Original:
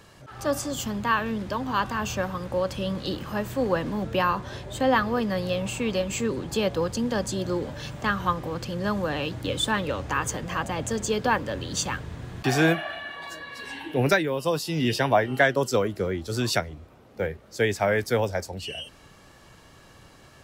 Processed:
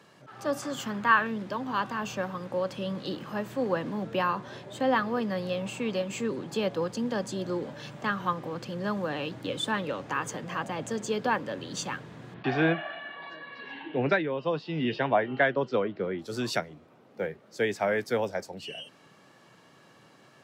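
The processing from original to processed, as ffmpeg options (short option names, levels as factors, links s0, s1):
-filter_complex "[0:a]asettb=1/sr,asplit=3[s0][s1][s2];[s0]atrim=end=0.624[s3];[s1]atrim=start=0.62:end=1.27,asetpts=PTS-STARTPTS,afade=t=in:d=0.004:c=qsin,afade=t=out:st=0.646:d=0.004:c=qsin,equalizer=f=1500:t=o:w=1.2:g=8.5[s4];[s2]atrim=start=1.266[s5];[s3][s4]acrossfade=d=0.004:c1=hsin:c2=qsin[s6];[s6][s5]acrossfade=d=0.004:c1=qsin:c2=hsin,asettb=1/sr,asplit=3[s7][s8][s9];[s7]atrim=end=12.344[s10];[s8]atrim=start=12.34:end=16.19,asetpts=PTS-STARTPTS,afade=t=in:d=0.004:c=qsin,afade=t=out:st=3.846:d=0.004:c=qsin,lowpass=f=3700:w=0.5412,lowpass=f=3700:w=1.3066[s11];[s9]atrim=start=16.186[s12];[s10][s11]acrossfade=d=0.004:c1=hsin:c2=qsin[s13];[s13][s12]acrossfade=d=0.004:c1=qsin:c2=hsin,highpass=f=140:w=0.5412,highpass=f=140:w=1.3066,highshelf=f=6000:g=-8.5,volume=0.668"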